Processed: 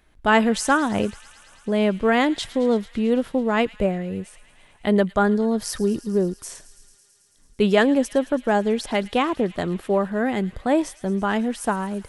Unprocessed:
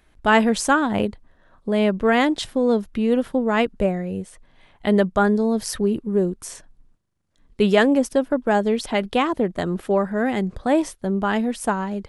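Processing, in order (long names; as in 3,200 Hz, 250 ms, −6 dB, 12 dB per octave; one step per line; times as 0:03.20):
delay with a high-pass on its return 110 ms, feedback 82%, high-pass 2,400 Hz, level −16 dB
level −1 dB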